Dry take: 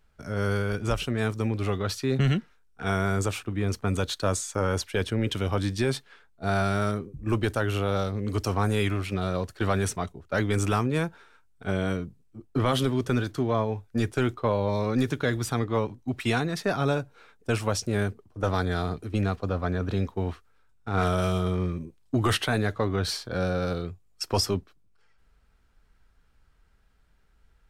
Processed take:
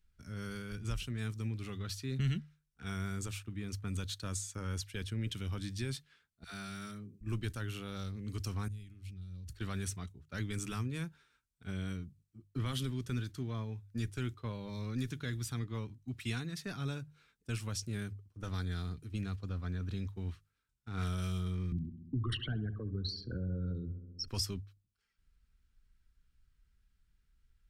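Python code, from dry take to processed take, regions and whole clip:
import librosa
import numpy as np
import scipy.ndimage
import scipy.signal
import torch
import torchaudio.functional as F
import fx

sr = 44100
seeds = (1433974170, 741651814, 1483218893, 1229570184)

y = fx.chain(x, sr, fx.highpass(hz=160.0, slope=12),
    fx.peak_eq(hz=490.0, db=-5.5, octaves=2.5),
    fx.dispersion(late='lows', ms=91.0, hz=550.0), at=(6.44, 7.21))
y = fx.chain(y, sr, fx.tone_stack(knobs='10-0-1'),
    fx.env_flatten(amount_pct=100), at=(8.68, 9.53))
y = fx.chain(y, sr, fx.envelope_sharpen(power=3.0),
    fx.echo_filtered(ms=66, feedback_pct=64, hz=1600.0, wet_db=-14.5),
    fx.band_squash(depth_pct=100), at=(21.72, 24.28))
y = fx.tone_stack(y, sr, knobs='6-0-2')
y = fx.hum_notches(y, sr, base_hz=50, count=3)
y = y * librosa.db_to_amplitude(6.5)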